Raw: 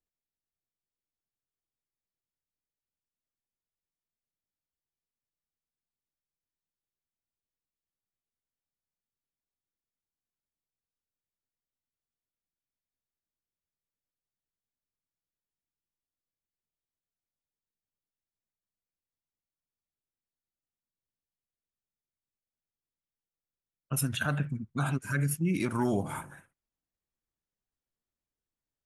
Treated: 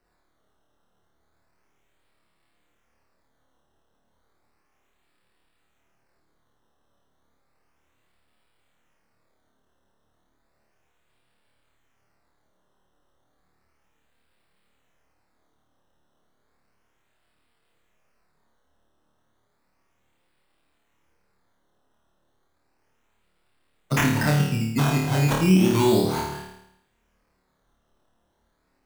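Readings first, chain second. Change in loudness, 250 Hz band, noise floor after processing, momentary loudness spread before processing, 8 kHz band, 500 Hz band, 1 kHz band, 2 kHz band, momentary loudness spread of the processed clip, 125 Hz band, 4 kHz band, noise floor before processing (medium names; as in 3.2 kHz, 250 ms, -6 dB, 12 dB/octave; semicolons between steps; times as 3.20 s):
+9.5 dB, +10.5 dB, -70 dBFS, 7 LU, +5.0 dB, +12.0 dB, +10.0 dB, +7.0 dB, 10 LU, +9.0 dB, +12.5 dB, under -85 dBFS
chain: peaking EQ 2.3 kHz -10 dB 2 oct; hum notches 50/100/150 Hz; decimation with a swept rate 13×, swing 100% 0.33 Hz; flutter echo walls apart 4.6 m, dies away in 0.69 s; three bands compressed up and down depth 40%; trim +8 dB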